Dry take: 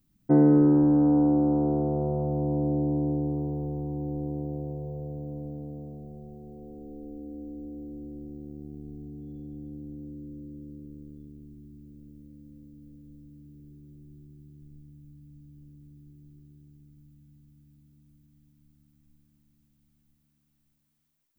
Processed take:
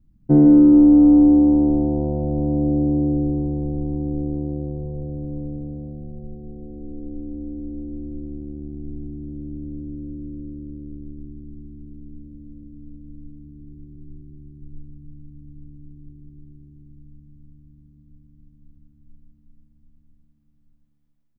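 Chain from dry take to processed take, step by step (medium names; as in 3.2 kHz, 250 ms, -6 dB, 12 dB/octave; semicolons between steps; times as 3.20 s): tilt EQ -4 dB/octave; multi-tap echo 51/153/431 ms -10/-8.5/-13.5 dB; trim -2.5 dB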